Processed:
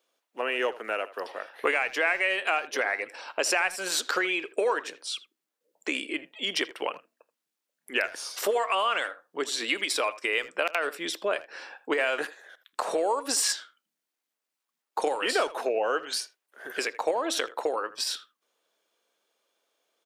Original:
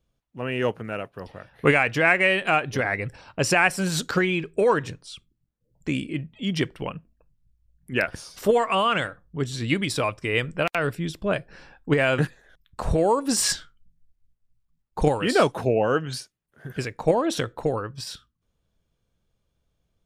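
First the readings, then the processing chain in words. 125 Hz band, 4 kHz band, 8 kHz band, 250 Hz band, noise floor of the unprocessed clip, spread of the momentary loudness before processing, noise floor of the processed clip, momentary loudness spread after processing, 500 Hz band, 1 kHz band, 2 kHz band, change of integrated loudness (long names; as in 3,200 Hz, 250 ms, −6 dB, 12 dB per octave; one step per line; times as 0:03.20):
below −30 dB, +0.5 dB, −0.5 dB, −12.0 dB, −76 dBFS, 16 LU, below −85 dBFS, 10 LU, −5.0 dB, −3.5 dB, −3.0 dB, −4.5 dB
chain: Bessel high-pass filter 540 Hz, order 6
downward compressor 3 to 1, threshold −34 dBFS, peak gain reduction 15 dB
far-end echo of a speakerphone 80 ms, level −16 dB
level +7.5 dB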